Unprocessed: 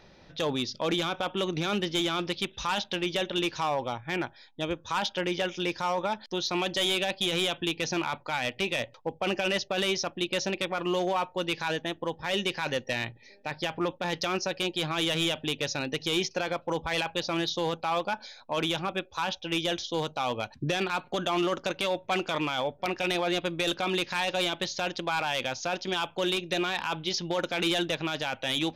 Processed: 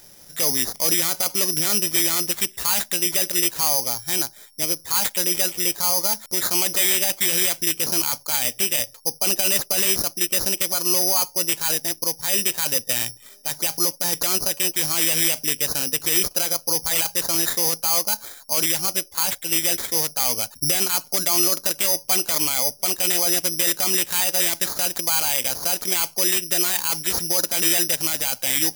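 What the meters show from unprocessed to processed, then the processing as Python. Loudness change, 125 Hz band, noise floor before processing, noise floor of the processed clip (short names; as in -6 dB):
+10.5 dB, -0.5 dB, -56 dBFS, -48 dBFS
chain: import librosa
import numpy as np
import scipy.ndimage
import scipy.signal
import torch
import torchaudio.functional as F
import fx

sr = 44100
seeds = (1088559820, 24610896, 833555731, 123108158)

y = (np.kron(x[::8], np.eye(8)[0]) * 8)[:len(x)]
y = F.gain(torch.from_numpy(y), -1.0).numpy()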